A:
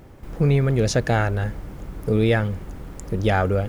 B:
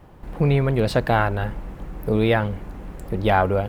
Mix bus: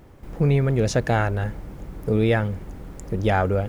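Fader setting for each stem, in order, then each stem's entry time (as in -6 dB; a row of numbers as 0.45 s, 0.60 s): -3.0 dB, -13.5 dB; 0.00 s, 0.00 s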